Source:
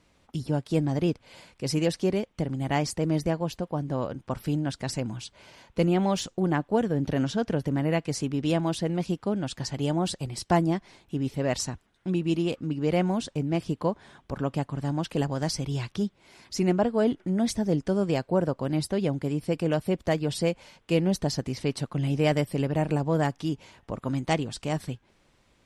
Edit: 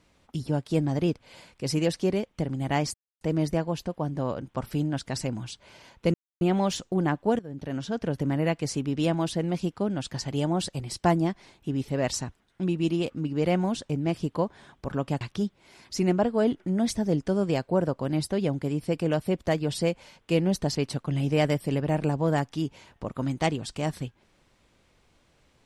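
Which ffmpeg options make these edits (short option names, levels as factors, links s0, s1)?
-filter_complex "[0:a]asplit=6[s0][s1][s2][s3][s4][s5];[s0]atrim=end=2.94,asetpts=PTS-STARTPTS,afade=t=out:st=2.936:d=0.004:c=hsin,apad=pad_dur=0.27[s6];[s1]atrim=start=2.94:end=5.87,asetpts=PTS-STARTPTS,afade=t=in:d=0.004:c=hsin,afade=t=out:st=2.926:d=0.004:c=hsin,apad=pad_dur=0.27[s7];[s2]atrim=start=5.87:end=6.85,asetpts=PTS-STARTPTS,afade=t=in:d=0.004:c=hsin,afade=t=out:st=0.976:d=0.004:c=hsin:silence=0.133352[s8];[s3]atrim=start=6.85:end=14.672,asetpts=PTS-STARTPTS,afade=t=in:d=0.84:silence=0.133352[s9];[s4]atrim=start=15.808:end=21.352[s10];[s5]atrim=start=21.618[s11];[s6][s7][s8][s9]concat=n=4:v=0:a=1[s12];[s12][s10]acrossfade=d=0.004:c1=hsin:c2=hsin[s13];[s13][s11]acrossfade=d=0.004:c1=hsin:c2=hsin"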